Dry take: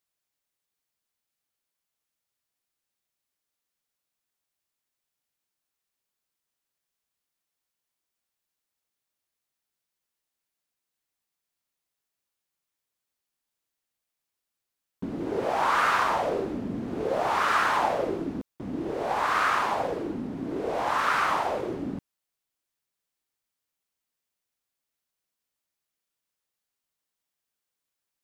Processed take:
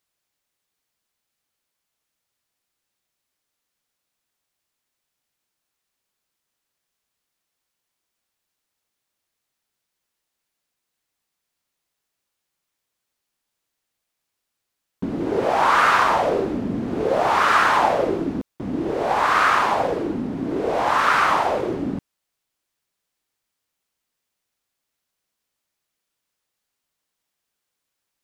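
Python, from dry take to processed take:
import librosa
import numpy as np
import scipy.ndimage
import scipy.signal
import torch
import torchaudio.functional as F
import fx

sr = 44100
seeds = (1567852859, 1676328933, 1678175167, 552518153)

y = fx.high_shelf(x, sr, hz=9600.0, db=-4.5)
y = F.gain(torch.from_numpy(y), 7.0).numpy()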